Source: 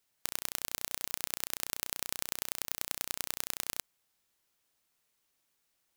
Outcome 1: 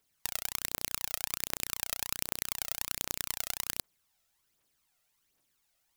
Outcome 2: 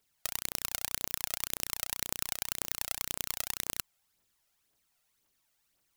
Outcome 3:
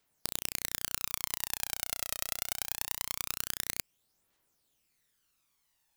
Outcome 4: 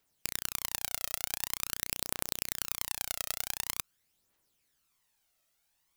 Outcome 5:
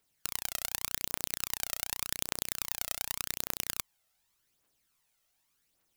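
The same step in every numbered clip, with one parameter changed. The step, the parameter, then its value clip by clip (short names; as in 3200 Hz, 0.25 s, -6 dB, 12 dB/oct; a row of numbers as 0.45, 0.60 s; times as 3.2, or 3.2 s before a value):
phaser, rate: 1.3, 1.9, 0.23, 0.46, 0.86 Hz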